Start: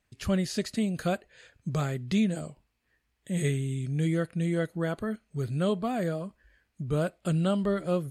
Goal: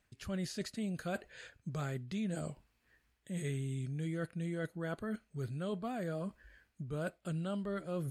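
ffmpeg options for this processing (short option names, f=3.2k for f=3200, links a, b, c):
-af "equalizer=f=1.5k:t=o:w=0.3:g=3.5,areverse,acompressor=threshold=-39dB:ratio=4,areverse,volume=1.5dB"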